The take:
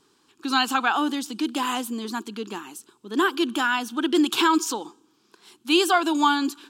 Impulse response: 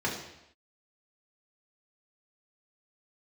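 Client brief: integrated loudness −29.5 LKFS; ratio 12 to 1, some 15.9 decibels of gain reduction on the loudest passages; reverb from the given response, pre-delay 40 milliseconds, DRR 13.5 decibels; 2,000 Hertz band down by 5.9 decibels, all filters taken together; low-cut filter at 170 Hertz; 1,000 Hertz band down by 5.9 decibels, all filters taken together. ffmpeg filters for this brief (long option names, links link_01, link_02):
-filter_complex "[0:a]highpass=170,equalizer=frequency=1000:width_type=o:gain=-6,equalizer=frequency=2000:width_type=o:gain=-6,acompressor=threshold=-33dB:ratio=12,asplit=2[link_01][link_02];[1:a]atrim=start_sample=2205,adelay=40[link_03];[link_02][link_03]afir=irnorm=-1:irlink=0,volume=-22.5dB[link_04];[link_01][link_04]amix=inputs=2:normalize=0,volume=7.5dB"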